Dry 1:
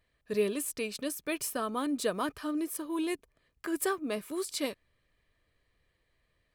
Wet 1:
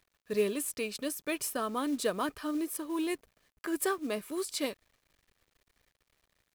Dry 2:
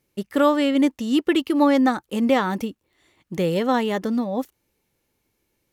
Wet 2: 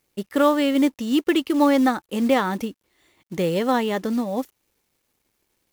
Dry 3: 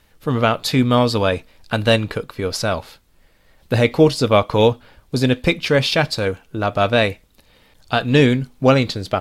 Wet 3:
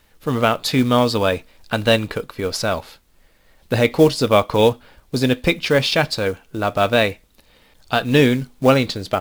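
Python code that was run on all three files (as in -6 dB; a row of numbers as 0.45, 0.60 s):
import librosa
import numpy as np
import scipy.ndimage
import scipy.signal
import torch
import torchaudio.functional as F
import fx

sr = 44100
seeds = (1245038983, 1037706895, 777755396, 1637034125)

y = fx.peak_eq(x, sr, hz=110.0, db=-3.5, octaves=1.1)
y = fx.quant_companded(y, sr, bits=6)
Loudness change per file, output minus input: 0.0, -0.5, -0.5 LU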